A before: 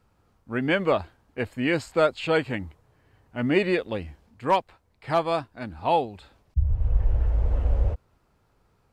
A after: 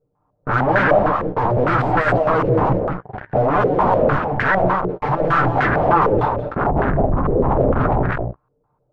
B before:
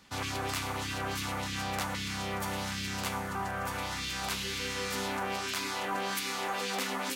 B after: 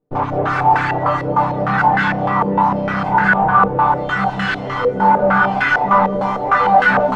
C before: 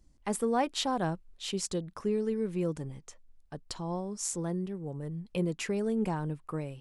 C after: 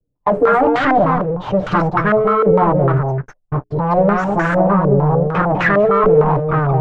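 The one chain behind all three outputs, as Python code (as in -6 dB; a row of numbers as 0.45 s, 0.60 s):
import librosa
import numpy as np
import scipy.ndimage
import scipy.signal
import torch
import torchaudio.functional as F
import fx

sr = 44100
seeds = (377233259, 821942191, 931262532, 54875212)

y = fx.lower_of_two(x, sr, delay_ms=6.7)
y = fx.hum_notches(y, sr, base_hz=60, count=7)
y = fx.over_compress(y, sr, threshold_db=-31.0, ratio=-0.5)
y = fx.peak_eq(y, sr, hz=120.0, db=6.5, octaves=0.6)
y = fx.noise_reduce_blind(y, sr, reduce_db=13)
y = fx.leveller(y, sr, passes=5)
y = fx.fold_sine(y, sr, drive_db=8, ceiling_db=-15.5)
y = fx.doubler(y, sr, ms=15.0, db=-14)
y = y + 10.0 ** (-4.0 / 20.0) * np.pad(y, (int(201 * sr / 1000.0), 0))[:len(y)]
y = fx.filter_held_lowpass(y, sr, hz=6.6, low_hz=480.0, high_hz=1600.0)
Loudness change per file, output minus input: +8.5 LU, +18.0 LU, +18.5 LU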